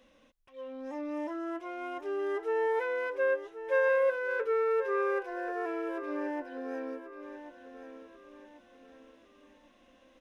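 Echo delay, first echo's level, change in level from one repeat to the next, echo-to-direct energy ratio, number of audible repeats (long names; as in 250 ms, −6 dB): 1,087 ms, −11.5 dB, −8.0 dB, −11.0 dB, 3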